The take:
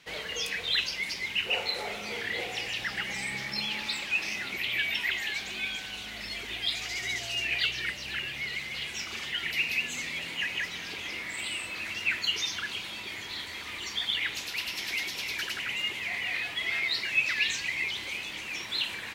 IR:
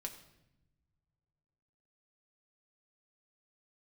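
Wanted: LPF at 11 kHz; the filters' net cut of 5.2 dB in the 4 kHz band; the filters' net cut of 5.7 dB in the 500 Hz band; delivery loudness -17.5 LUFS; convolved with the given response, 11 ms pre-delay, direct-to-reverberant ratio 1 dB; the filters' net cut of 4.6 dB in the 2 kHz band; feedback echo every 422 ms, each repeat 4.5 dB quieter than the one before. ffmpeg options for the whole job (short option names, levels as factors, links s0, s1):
-filter_complex "[0:a]lowpass=11000,equalizer=f=500:t=o:g=-7,equalizer=f=2000:t=o:g=-3.5,equalizer=f=4000:t=o:g=-5.5,aecho=1:1:422|844|1266|1688|2110|2532|2954|3376|3798:0.596|0.357|0.214|0.129|0.0772|0.0463|0.0278|0.0167|0.01,asplit=2[s0][s1];[1:a]atrim=start_sample=2205,adelay=11[s2];[s1][s2]afir=irnorm=-1:irlink=0,volume=1.19[s3];[s0][s3]amix=inputs=2:normalize=0,volume=4.73"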